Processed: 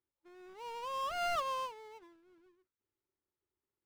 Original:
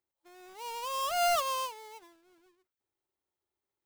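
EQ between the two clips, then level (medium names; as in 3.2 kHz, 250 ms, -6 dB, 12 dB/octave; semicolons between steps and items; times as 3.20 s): low-pass 1.1 kHz 6 dB/octave; peaking EQ 710 Hz -9.5 dB 0.71 oct; +2.0 dB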